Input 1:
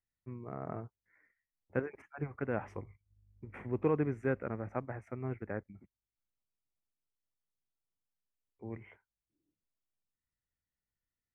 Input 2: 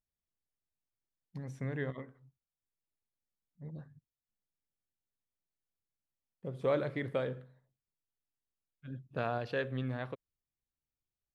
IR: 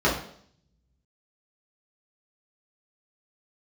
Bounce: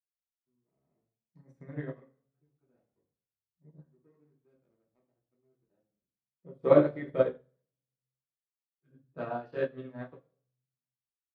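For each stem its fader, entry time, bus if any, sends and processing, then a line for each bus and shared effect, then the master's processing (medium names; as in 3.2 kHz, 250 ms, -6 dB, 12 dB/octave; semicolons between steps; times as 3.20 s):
-10.5 dB, 0.20 s, send -15.5 dB, median filter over 41 samples; auto duck -12 dB, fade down 1.65 s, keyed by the second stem
+3.0 dB, 0.00 s, send -12 dB, none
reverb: on, RT60 0.60 s, pre-delay 3 ms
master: upward expansion 2.5:1, over -35 dBFS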